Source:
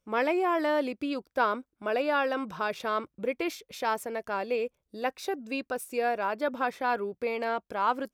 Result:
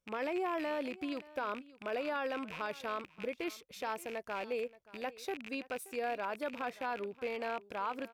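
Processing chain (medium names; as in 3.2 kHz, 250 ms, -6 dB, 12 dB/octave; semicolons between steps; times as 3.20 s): rattle on loud lows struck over -48 dBFS, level -26 dBFS; peak limiter -20.5 dBFS, peak gain reduction 7 dB; delay 577 ms -19.5 dB; trim -7 dB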